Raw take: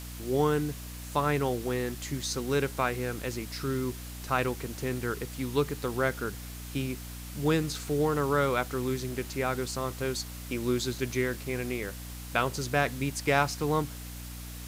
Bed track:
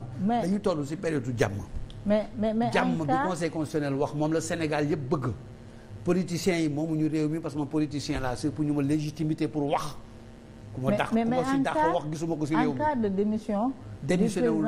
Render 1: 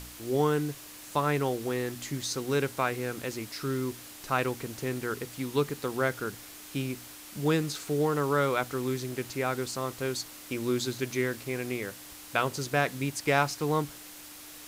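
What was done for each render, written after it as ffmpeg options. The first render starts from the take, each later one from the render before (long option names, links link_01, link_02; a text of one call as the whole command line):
ffmpeg -i in.wav -af "bandreject=frequency=60:width_type=h:width=4,bandreject=frequency=120:width_type=h:width=4,bandreject=frequency=180:width_type=h:width=4,bandreject=frequency=240:width_type=h:width=4" out.wav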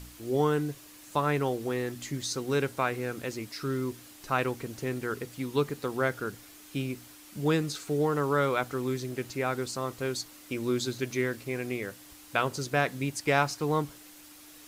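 ffmpeg -i in.wav -af "afftdn=noise_reduction=6:noise_floor=-47" out.wav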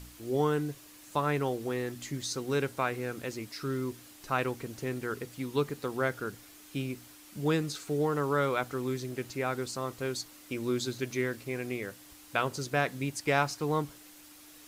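ffmpeg -i in.wav -af "volume=-2dB" out.wav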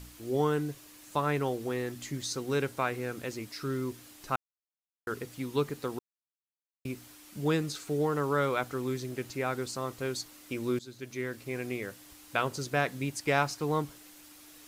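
ffmpeg -i in.wav -filter_complex "[0:a]asplit=6[link_01][link_02][link_03][link_04][link_05][link_06];[link_01]atrim=end=4.36,asetpts=PTS-STARTPTS,afade=type=out:start_time=4.356:duration=0.004:curve=hsin[link_07];[link_02]atrim=start=4.36:end=5.07,asetpts=PTS-STARTPTS,volume=0[link_08];[link_03]atrim=start=5.07:end=5.99,asetpts=PTS-STARTPTS,afade=type=in:duration=0.004:curve=hsin,afade=type=out:start_time=0.916:duration=0.004:curve=hsin[link_09];[link_04]atrim=start=5.99:end=6.85,asetpts=PTS-STARTPTS,volume=0[link_10];[link_05]atrim=start=6.85:end=10.79,asetpts=PTS-STARTPTS,afade=type=in:duration=0.004:curve=hsin,afade=type=out:start_time=3.936:duration=0.004:curve=hsin:silence=0.149624[link_11];[link_06]atrim=start=10.79,asetpts=PTS-STARTPTS,afade=type=in:duration=0.8:silence=0.149624[link_12];[link_07][link_08][link_09][link_10][link_11][link_12]concat=n=6:v=0:a=1" out.wav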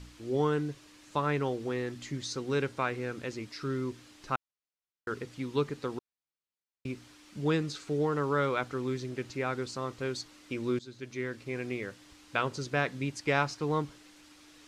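ffmpeg -i in.wav -af "lowpass=5800,equalizer=frequency=700:width=3.6:gain=-3.5" out.wav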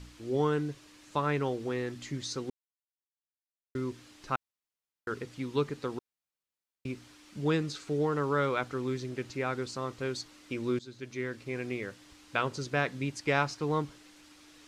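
ffmpeg -i in.wav -filter_complex "[0:a]asplit=3[link_01][link_02][link_03];[link_01]atrim=end=2.5,asetpts=PTS-STARTPTS,afade=type=out:start_time=2.496:duration=0.004:curve=hsin[link_04];[link_02]atrim=start=2.5:end=3.75,asetpts=PTS-STARTPTS,volume=0[link_05];[link_03]atrim=start=3.75,asetpts=PTS-STARTPTS,afade=type=in:duration=0.004:curve=hsin[link_06];[link_04][link_05][link_06]concat=n=3:v=0:a=1" out.wav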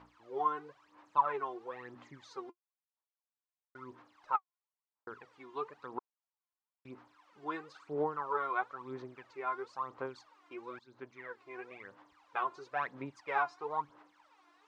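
ffmpeg -i in.wav -af "aphaser=in_gain=1:out_gain=1:delay=2.9:decay=0.74:speed=1:type=sinusoidal,bandpass=frequency=970:width_type=q:width=2.7:csg=0" out.wav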